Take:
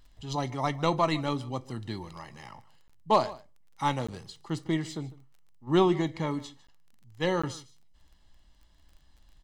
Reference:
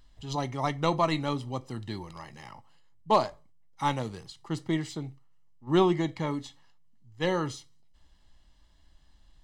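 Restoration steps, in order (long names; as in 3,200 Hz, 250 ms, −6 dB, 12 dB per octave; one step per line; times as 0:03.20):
click removal
repair the gap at 0:02.88/0:04.07/0:06.67/0:07.42, 15 ms
echo removal 150 ms −20 dB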